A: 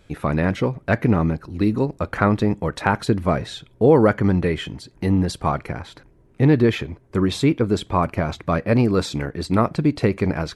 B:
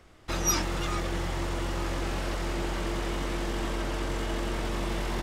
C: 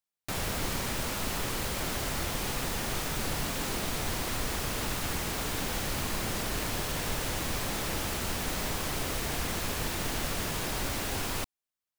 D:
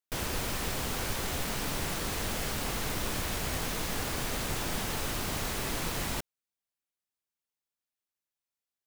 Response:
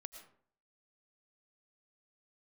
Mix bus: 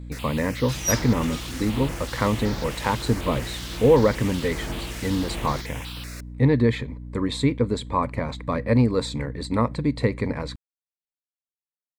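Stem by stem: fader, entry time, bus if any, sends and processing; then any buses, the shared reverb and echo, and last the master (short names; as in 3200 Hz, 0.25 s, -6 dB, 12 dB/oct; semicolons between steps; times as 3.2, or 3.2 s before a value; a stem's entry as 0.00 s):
-5.0 dB, 0.00 s, no send, ripple EQ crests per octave 1, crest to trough 10 dB
-1.5 dB, 0.40 s, no send, high shelf 4200 Hz +9 dB; harmonic tremolo 1.4 Hz, depth 70%, crossover 2100 Hz
off
-8.0 dB, 0.00 s, send -24 dB, weighting filter D; step phaser 5.3 Hz 850–2700 Hz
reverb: on, RT60 0.55 s, pre-delay 70 ms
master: hum 60 Hz, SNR 13 dB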